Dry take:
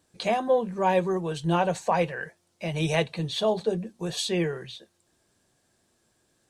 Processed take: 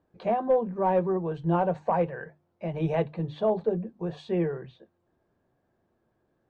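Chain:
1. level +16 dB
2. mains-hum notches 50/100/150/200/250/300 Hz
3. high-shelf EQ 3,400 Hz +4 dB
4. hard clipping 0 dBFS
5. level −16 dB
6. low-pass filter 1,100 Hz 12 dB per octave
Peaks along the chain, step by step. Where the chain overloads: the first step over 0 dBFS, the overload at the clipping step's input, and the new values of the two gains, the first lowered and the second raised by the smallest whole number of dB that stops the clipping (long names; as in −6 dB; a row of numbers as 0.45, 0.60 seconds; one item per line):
+5.0, +5.0, +5.5, 0.0, −16.0, −15.5 dBFS
step 1, 5.5 dB
step 1 +10 dB, step 5 −10 dB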